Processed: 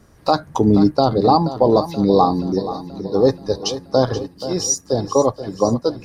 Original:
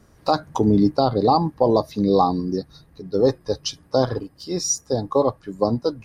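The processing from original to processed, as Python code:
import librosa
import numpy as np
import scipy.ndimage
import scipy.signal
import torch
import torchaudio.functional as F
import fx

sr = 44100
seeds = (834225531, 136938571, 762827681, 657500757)

y = fx.echo_feedback(x, sr, ms=479, feedback_pct=59, wet_db=-13.0)
y = F.gain(torch.from_numpy(y), 3.0).numpy()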